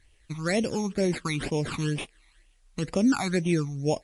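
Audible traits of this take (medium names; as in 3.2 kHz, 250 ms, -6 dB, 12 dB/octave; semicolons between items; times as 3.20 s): aliases and images of a low sample rate 6 kHz, jitter 0%; phasing stages 12, 2.1 Hz, lowest notch 500–1500 Hz; a quantiser's noise floor 12-bit, dither triangular; MP3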